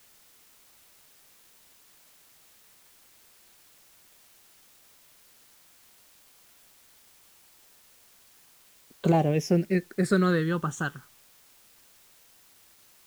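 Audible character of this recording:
phaser sweep stages 8, 0.16 Hz, lowest notch 660–2,700 Hz
a quantiser's noise floor 10 bits, dither triangular

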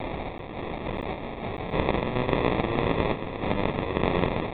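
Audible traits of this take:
a quantiser's noise floor 6 bits, dither triangular
sample-and-hold tremolo
aliases and images of a low sample rate 1,500 Hz, jitter 0%
mu-law

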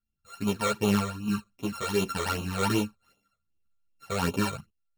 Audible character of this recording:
a buzz of ramps at a fixed pitch in blocks of 32 samples
phaser sweep stages 12, 2.6 Hz, lowest notch 270–1,700 Hz
tremolo saw up 0.64 Hz, depth 65%
a shimmering, thickened sound

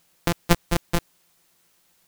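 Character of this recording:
a buzz of ramps at a fixed pitch in blocks of 256 samples
chopped level 7.9 Hz, depth 60%, duty 20%
a quantiser's noise floor 12 bits, dither triangular

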